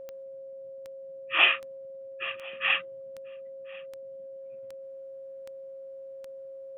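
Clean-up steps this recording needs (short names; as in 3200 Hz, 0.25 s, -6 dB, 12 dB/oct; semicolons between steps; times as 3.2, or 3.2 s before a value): de-click; notch 540 Hz, Q 30; inverse comb 1.045 s -23.5 dB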